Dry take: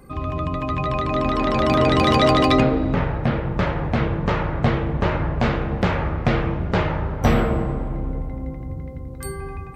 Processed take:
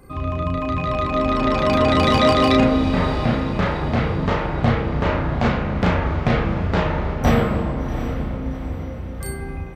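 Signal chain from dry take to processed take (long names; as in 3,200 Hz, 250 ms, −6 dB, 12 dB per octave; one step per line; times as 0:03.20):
double-tracking delay 34 ms −2.5 dB
feedback delay with all-pass diffusion 732 ms, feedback 46%, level −11 dB
level −1 dB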